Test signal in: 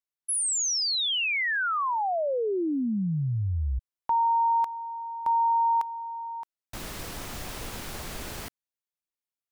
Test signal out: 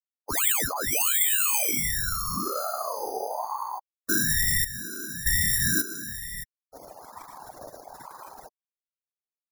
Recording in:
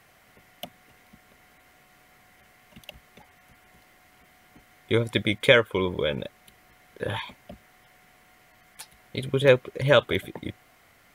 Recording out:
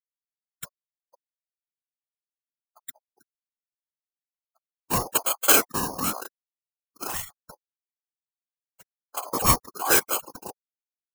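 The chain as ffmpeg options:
-af "afftfilt=real='re*gte(hypot(re,im),0.0282)':imag='im*gte(hypot(re,im),0.0282)':win_size=1024:overlap=0.75,acrusher=samples=8:mix=1:aa=0.000001,aexciter=amount=4.3:drive=6.1:freq=5.5k,afftfilt=real='hypot(re,im)*cos(2*PI*random(0))':imag='hypot(re,im)*sin(2*PI*random(1))':win_size=512:overlap=0.75,aeval=exprs='val(0)*sin(2*PI*800*n/s+800*0.25/1.1*sin(2*PI*1.1*n/s))':c=same,volume=4.5dB"

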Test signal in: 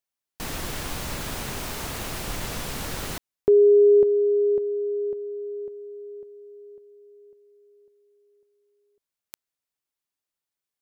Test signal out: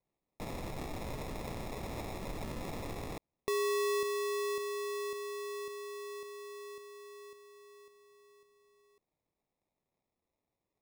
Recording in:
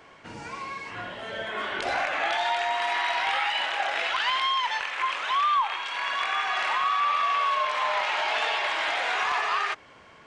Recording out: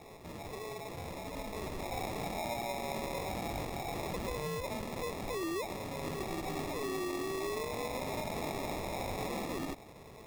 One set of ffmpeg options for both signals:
-af "acompressor=threshold=-48dB:ratio=2:release=24:detection=rms,acrusher=samples=29:mix=1:aa=0.000001"

